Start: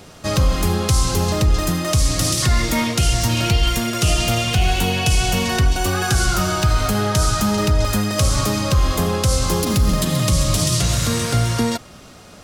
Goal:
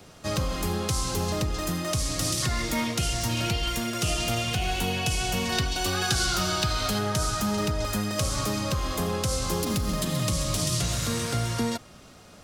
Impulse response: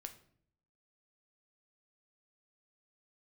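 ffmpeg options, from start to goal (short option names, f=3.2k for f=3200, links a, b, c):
-filter_complex "[0:a]asettb=1/sr,asplit=3[a][b][c];[a]atrim=end=5.524[d];[b]atrim=start=5.52:end=6.99,asetpts=PTS-STARTPTS,afade=t=in:d=0.004:c=qsin,afade=t=out:st=1.466:d=0.004:c=qsin,equalizer=f=4k:t=o:w=1.1:g=8[e];[c]atrim=start=6.986[f];[d][e]acrossfade=d=0.004:c1=hsin:c2=qsin[g];[g][f]acrossfade=d=0.004:c1=qsin:c2=hsin,acrossover=split=160|1000|5100[h][i][j][k];[h]alimiter=limit=-17dB:level=0:latency=1:release=393[l];[l][i][j][k]amix=inputs=4:normalize=0,volume=-7.5dB"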